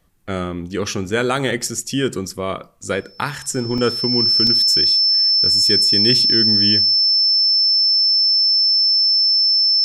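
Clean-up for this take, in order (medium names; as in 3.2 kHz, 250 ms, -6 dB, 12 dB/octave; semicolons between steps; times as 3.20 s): band-stop 5.3 kHz, Q 30; interpolate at 1.37/2.83/3.78/4.47 s, 2.5 ms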